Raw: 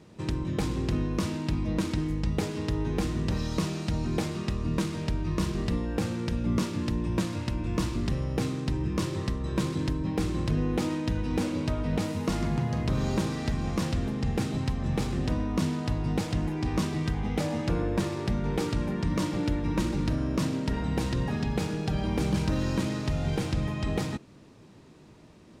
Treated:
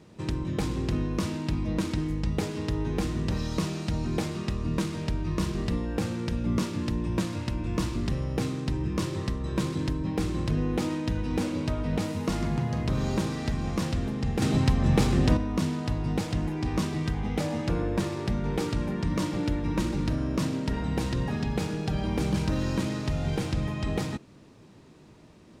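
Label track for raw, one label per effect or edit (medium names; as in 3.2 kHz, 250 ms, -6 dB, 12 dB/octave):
14.420000	15.370000	gain +6.5 dB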